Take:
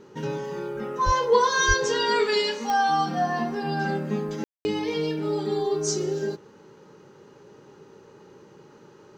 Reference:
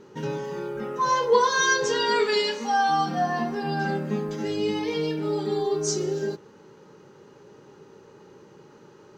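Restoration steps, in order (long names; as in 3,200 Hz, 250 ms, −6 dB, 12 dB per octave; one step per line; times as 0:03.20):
click removal
high-pass at the plosives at 0:01.05/0:01.67
ambience match 0:04.44–0:04.65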